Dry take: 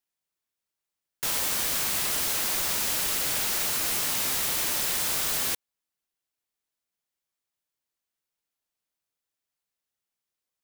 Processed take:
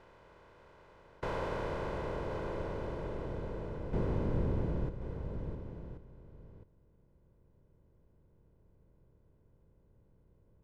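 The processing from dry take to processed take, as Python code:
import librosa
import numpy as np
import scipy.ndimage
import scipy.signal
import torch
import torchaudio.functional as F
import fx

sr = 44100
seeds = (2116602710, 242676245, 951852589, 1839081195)

p1 = fx.bin_compress(x, sr, power=0.4)
p2 = p1 + 0.52 * np.pad(p1, (int(2.0 * sr / 1000.0), 0))[:len(p1)]
p3 = fx.leveller(p2, sr, passes=5, at=(3.93, 4.89))
p4 = fx.filter_sweep_lowpass(p3, sr, from_hz=1000.0, to_hz=210.0, start_s=0.89, end_s=4.81, q=0.7)
y = p4 + fx.echo_single(p4, sr, ms=1084, db=-11.5, dry=0)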